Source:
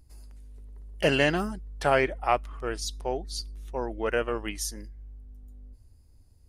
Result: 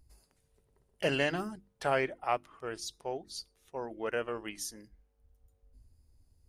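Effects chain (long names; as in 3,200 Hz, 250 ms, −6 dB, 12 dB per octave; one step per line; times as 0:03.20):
mains-hum notches 50/100/150/200/250/300/350 Hz
level −6.5 dB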